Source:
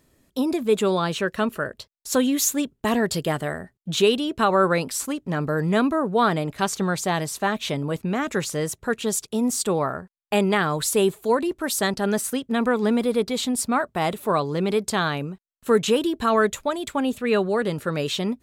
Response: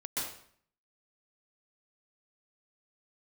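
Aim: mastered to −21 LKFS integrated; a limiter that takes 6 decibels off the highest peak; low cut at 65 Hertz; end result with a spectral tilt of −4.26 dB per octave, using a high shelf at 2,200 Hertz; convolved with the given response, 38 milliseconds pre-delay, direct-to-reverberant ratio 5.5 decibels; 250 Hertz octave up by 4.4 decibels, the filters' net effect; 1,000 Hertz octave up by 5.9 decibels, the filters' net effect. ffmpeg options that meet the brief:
-filter_complex "[0:a]highpass=65,equalizer=frequency=250:width_type=o:gain=5,equalizer=frequency=1000:width_type=o:gain=6.5,highshelf=frequency=2200:gain=3.5,alimiter=limit=-8.5dB:level=0:latency=1,asplit=2[link_01][link_02];[1:a]atrim=start_sample=2205,adelay=38[link_03];[link_02][link_03]afir=irnorm=-1:irlink=0,volume=-9.5dB[link_04];[link_01][link_04]amix=inputs=2:normalize=0,volume=-1.5dB"

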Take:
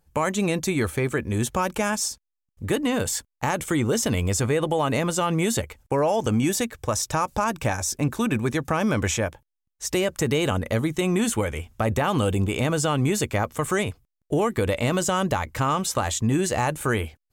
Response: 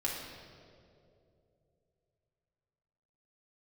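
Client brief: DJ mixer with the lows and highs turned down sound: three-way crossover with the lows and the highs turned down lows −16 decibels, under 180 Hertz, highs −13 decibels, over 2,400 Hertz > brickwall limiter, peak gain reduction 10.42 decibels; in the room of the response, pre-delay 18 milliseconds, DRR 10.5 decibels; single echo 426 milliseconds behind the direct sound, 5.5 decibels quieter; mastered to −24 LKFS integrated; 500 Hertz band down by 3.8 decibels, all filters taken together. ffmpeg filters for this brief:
-filter_complex "[0:a]equalizer=frequency=500:width_type=o:gain=-4.5,aecho=1:1:426:0.531,asplit=2[link_01][link_02];[1:a]atrim=start_sample=2205,adelay=18[link_03];[link_02][link_03]afir=irnorm=-1:irlink=0,volume=-15dB[link_04];[link_01][link_04]amix=inputs=2:normalize=0,acrossover=split=180 2400:gain=0.158 1 0.224[link_05][link_06][link_07];[link_05][link_06][link_07]amix=inputs=3:normalize=0,volume=7dB,alimiter=limit=-14dB:level=0:latency=1"

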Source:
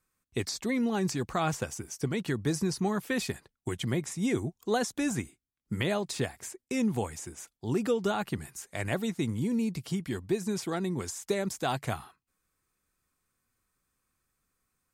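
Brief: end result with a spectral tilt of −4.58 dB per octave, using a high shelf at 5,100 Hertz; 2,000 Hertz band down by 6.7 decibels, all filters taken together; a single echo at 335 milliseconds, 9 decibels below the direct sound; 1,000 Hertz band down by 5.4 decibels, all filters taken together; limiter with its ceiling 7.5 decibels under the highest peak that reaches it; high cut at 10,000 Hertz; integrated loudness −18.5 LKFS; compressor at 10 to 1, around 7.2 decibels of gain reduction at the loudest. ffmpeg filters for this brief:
ffmpeg -i in.wav -af "lowpass=10000,equalizer=frequency=1000:width_type=o:gain=-6.5,equalizer=frequency=2000:width_type=o:gain=-7.5,highshelf=frequency=5100:gain=6.5,acompressor=threshold=-31dB:ratio=10,alimiter=level_in=5dB:limit=-24dB:level=0:latency=1,volume=-5dB,aecho=1:1:335:0.355,volume=20dB" out.wav

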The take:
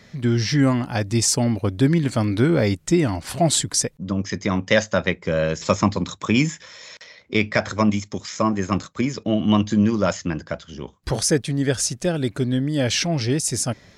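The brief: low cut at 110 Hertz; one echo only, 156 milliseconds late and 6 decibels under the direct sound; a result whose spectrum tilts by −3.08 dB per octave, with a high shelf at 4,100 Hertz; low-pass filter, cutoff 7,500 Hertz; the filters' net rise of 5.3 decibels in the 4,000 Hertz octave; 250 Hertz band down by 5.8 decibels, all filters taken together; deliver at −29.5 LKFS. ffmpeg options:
ffmpeg -i in.wav -af "highpass=110,lowpass=7500,equalizer=frequency=250:width_type=o:gain=-7.5,equalizer=frequency=4000:width_type=o:gain=4,highshelf=frequency=4100:gain=5.5,aecho=1:1:156:0.501,volume=-8.5dB" out.wav

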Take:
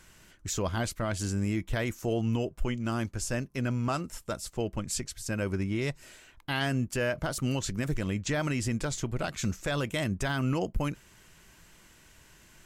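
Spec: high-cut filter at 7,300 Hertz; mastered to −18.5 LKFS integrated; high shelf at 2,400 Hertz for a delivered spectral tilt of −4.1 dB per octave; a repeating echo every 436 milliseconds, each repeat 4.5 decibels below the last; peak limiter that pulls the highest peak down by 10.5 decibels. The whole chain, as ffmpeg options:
ffmpeg -i in.wav -af "lowpass=7300,highshelf=frequency=2400:gain=7.5,alimiter=level_in=1dB:limit=-24dB:level=0:latency=1,volume=-1dB,aecho=1:1:436|872|1308|1744|2180|2616|3052|3488|3924:0.596|0.357|0.214|0.129|0.0772|0.0463|0.0278|0.0167|0.01,volume=15.5dB" out.wav

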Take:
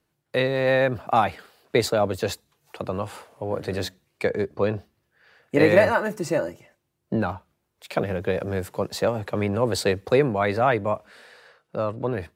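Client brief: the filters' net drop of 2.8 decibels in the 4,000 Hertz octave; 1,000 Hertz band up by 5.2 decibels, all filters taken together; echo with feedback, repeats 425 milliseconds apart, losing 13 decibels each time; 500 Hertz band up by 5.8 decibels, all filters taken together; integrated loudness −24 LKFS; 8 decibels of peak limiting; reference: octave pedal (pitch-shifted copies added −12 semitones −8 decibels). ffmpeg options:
ffmpeg -i in.wav -filter_complex "[0:a]equalizer=frequency=500:width_type=o:gain=5.5,equalizer=frequency=1000:width_type=o:gain=5,equalizer=frequency=4000:width_type=o:gain=-3.5,alimiter=limit=-9dB:level=0:latency=1,aecho=1:1:425|850|1275:0.224|0.0493|0.0108,asplit=2[link_01][link_02];[link_02]asetrate=22050,aresample=44100,atempo=2,volume=-8dB[link_03];[link_01][link_03]amix=inputs=2:normalize=0,volume=-2.5dB" out.wav

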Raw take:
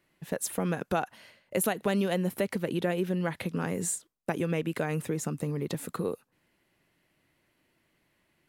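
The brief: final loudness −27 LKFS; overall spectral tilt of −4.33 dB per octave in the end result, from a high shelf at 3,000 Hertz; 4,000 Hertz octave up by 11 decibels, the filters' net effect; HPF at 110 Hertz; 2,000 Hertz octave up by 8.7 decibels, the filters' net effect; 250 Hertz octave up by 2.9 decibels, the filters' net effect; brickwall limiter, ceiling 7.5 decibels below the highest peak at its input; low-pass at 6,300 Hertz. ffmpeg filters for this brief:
ffmpeg -i in.wav -af "highpass=110,lowpass=6300,equalizer=frequency=250:width_type=o:gain=5,equalizer=frequency=2000:width_type=o:gain=6.5,highshelf=frequency=3000:gain=8,equalizer=frequency=4000:width_type=o:gain=6.5,volume=2.5dB,alimiter=limit=-13dB:level=0:latency=1" out.wav

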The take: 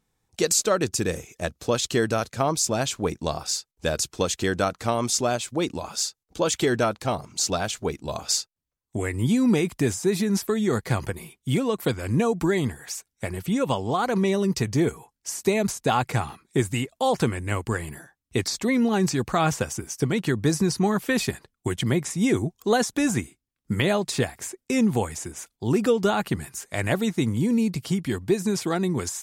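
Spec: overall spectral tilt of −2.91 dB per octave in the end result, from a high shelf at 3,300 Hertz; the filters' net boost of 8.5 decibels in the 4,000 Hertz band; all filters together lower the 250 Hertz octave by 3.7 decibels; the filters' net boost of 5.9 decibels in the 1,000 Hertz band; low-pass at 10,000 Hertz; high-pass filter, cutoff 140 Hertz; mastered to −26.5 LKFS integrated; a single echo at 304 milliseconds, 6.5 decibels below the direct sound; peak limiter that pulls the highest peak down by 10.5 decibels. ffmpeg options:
ffmpeg -i in.wav -af "highpass=140,lowpass=10000,equalizer=frequency=250:width_type=o:gain=-4.5,equalizer=frequency=1000:width_type=o:gain=7.5,highshelf=frequency=3300:gain=4.5,equalizer=frequency=4000:width_type=o:gain=7,alimiter=limit=-13dB:level=0:latency=1,aecho=1:1:304:0.473,volume=-1.5dB" out.wav

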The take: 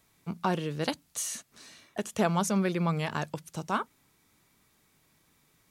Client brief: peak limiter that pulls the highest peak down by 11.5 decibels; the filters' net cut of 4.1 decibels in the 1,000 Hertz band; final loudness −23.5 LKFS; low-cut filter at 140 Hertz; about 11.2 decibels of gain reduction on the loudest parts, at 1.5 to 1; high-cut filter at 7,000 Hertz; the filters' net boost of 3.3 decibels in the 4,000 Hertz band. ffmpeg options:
ffmpeg -i in.wav -af "highpass=140,lowpass=7000,equalizer=frequency=1000:width_type=o:gain=-5.5,equalizer=frequency=4000:width_type=o:gain=5,acompressor=threshold=-56dB:ratio=1.5,volume=23.5dB,alimiter=limit=-11dB:level=0:latency=1" out.wav

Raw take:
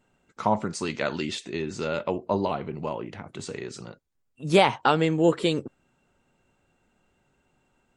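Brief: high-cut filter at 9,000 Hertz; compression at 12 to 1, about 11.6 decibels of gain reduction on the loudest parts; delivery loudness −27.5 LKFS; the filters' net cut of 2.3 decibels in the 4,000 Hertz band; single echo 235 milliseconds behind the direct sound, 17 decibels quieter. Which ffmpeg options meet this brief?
ffmpeg -i in.wav -af "lowpass=9000,equalizer=frequency=4000:width_type=o:gain=-3,acompressor=threshold=-25dB:ratio=12,aecho=1:1:235:0.141,volume=5.5dB" out.wav

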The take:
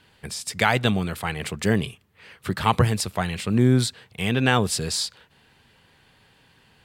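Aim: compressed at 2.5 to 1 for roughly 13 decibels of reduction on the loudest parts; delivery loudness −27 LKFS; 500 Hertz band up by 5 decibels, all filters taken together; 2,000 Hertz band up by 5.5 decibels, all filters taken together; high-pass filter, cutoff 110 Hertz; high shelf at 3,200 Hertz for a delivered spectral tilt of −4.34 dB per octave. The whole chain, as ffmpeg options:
ffmpeg -i in.wav -af "highpass=110,equalizer=frequency=500:width_type=o:gain=6,equalizer=frequency=2000:width_type=o:gain=8.5,highshelf=frequency=3200:gain=-5.5,acompressor=threshold=-32dB:ratio=2.5,volume=5.5dB" out.wav

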